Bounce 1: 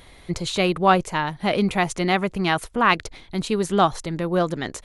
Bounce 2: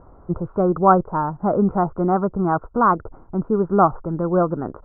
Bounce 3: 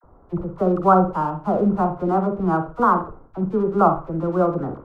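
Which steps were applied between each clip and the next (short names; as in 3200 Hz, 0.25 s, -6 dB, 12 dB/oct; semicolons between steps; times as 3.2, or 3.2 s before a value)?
Chebyshev low-pass 1400 Hz, order 6; gain +3.5 dB
in parallel at -8.5 dB: crossover distortion -34 dBFS; on the sum: dispersion lows, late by 42 ms, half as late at 710 Hz; reverb, pre-delay 43 ms, DRR 6.5 dB; gain -4 dB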